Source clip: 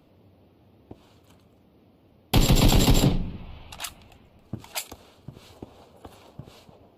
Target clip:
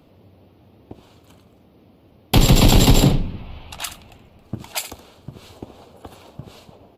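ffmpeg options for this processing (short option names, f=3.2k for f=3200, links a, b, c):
-af "aecho=1:1:74:0.237,volume=5.5dB"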